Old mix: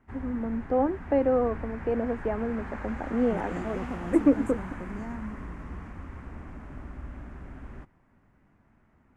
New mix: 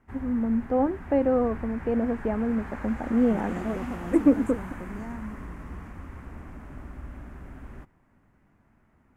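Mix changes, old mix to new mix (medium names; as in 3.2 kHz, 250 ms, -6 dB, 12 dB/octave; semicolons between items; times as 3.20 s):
first voice: remove high-pass 260 Hz 24 dB/octave; background: remove Bessel low-pass 6.6 kHz, order 2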